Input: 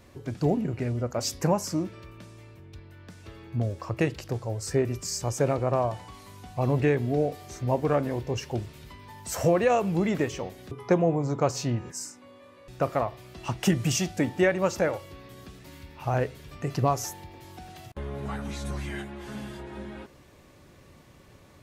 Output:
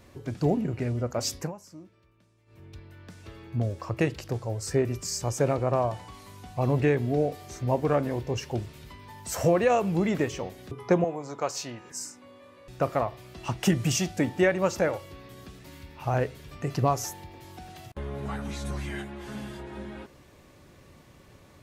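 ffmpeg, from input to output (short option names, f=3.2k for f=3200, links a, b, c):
-filter_complex "[0:a]asettb=1/sr,asplit=3[a][b][c];[a]atrim=end=11.044[d];[b]atrim=start=11.04:end=11.91,asetpts=PTS-STARTPTS,afade=t=in:d=0.004:c=qsin,afade=t=out:st=0.866:d=0.004:c=qsin,highpass=f=830:p=1[e];[c]atrim=start=11.906[f];[d][e]acrossfade=d=0.004:c1=hsin:c2=qsin[g];[g][f]acrossfade=d=0.004:c1=qsin:c2=hsin,asplit=3[h][i][j];[h]atrim=end=1.52,asetpts=PTS-STARTPTS,afade=t=out:st=1.35:d=0.17:silence=0.125893[k];[i]atrim=start=1.52:end=2.46,asetpts=PTS-STARTPTS,volume=-18dB[l];[j]atrim=start=2.46,asetpts=PTS-STARTPTS,afade=t=in:d=0.17:silence=0.125893[m];[k][l][m]concat=n=3:v=0:a=1"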